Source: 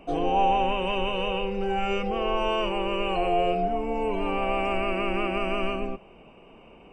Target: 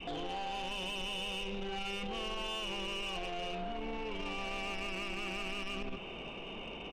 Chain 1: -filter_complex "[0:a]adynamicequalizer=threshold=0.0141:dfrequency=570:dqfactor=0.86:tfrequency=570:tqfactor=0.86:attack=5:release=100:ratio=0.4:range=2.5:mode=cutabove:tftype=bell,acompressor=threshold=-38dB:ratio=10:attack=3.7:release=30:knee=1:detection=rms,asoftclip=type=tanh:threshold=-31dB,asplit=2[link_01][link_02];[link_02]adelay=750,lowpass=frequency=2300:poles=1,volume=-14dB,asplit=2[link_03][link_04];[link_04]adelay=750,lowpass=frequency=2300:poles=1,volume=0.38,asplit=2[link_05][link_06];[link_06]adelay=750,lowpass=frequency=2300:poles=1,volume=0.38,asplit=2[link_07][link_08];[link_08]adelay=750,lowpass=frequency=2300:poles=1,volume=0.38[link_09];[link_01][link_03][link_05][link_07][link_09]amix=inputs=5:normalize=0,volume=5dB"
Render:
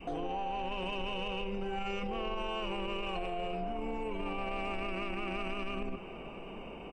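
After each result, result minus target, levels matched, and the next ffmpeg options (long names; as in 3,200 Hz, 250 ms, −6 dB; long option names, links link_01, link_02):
soft clipping: distortion −12 dB; 4,000 Hz band −5.5 dB
-filter_complex "[0:a]adynamicequalizer=threshold=0.0141:dfrequency=570:dqfactor=0.86:tfrequency=570:tqfactor=0.86:attack=5:release=100:ratio=0.4:range=2.5:mode=cutabove:tftype=bell,acompressor=threshold=-38dB:ratio=10:attack=3.7:release=30:knee=1:detection=rms,asoftclip=type=tanh:threshold=-39.5dB,asplit=2[link_01][link_02];[link_02]adelay=750,lowpass=frequency=2300:poles=1,volume=-14dB,asplit=2[link_03][link_04];[link_04]adelay=750,lowpass=frequency=2300:poles=1,volume=0.38,asplit=2[link_05][link_06];[link_06]adelay=750,lowpass=frequency=2300:poles=1,volume=0.38,asplit=2[link_07][link_08];[link_08]adelay=750,lowpass=frequency=2300:poles=1,volume=0.38[link_09];[link_01][link_03][link_05][link_07][link_09]amix=inputs=5:normalize=0,volume=5dB"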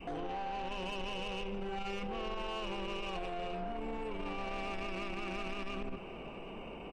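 4,000 Hz band −5.0 dB
-filter_complex "[0:a]adynamicequalizer=threshold=0.0141:dfrequency=570:dqfactor=0.86:tfrequency=570:tqfactor=0.86:attack=5:release=100:ratio=0.4:range=2.5:mode=cutabove:tftype=bell,lowpass=frequency=3500:width_type=q:width=12,acompressor=threshold=-38dB:ratio=10:attack=3.7:release=30:knee=1:detection=rms,asoftclip=type=tanh:threshold=-39.5dB,asplit=2[link_01][link_02];[link_02]adelay=750,lowpass=frequency=2300:poles=1,volume=-14dB,asplit=2[link_03][link_04];[link_04]adelay=750,lowpass=frequency=2300:poles=1,volume=0.38,asplit=2[link_05][link_06];[link_06]adelay=750,lowpass=frequency=2300:poles=1,volume=0.38,asplit=2[link_07][link_08];[link_08]adelay=750,lowpass=frequency=2300:poles=1,volume=0.38[link_09];[link_01][link_03][link_05][link_07][link_09]amix=inputs=5:normalize=0,volume=5dB"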